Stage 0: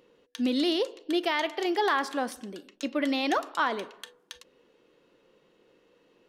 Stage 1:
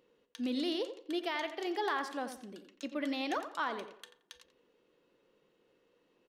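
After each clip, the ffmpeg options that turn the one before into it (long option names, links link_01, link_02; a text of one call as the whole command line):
ffmpeg -i in.wav -filter_complex "[0:a]asplit=2[link_01][link_02];[link_02]adelay=87,lowpass=frequency=3000:poles=1,volume=-10dB,asplit=2[link_03][link_04];[link_04]adelay=87,lowpass=frequency=3000:poles=1,volume=0.28,asplit=2[link_05][link_06];[link_06]adelay=87,lowpass=frequency=3000:poles=1,volume=0.28[link_07];[link_01][link_03][link_05][link_07]amix=inputs=4:normalize=0,volume=-8.5dB" out.wav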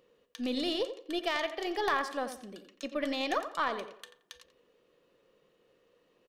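ffmpeg -i in.wav -af "aeval=exprs='0.0891*(cos(1*acos(clip(val(0)/0.0891,-1,1)))-cos(1*PI/2))+0.0158*(cos(3*acos(clip(val(0)/0.0891,-1,1)))-cos(3*PI/2))+0.002*(cos(4*acos(clip(val(0)/0.0891,-1,1)))-cos(4*PI/2))+0.00282*(cos(5*acos(clip(val(0)/0.0891,-1,1)))-cos(5*PI/2))':channel_layout=same,aecho=1:1:1.7:0.32,volume=7dB" out.wav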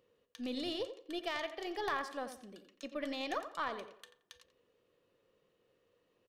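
ffmpeg -i in.wav -af "equalizer=frequency=100:width_type=o:width=0.38:gain=12.5,volume=-6.5dB" out.wav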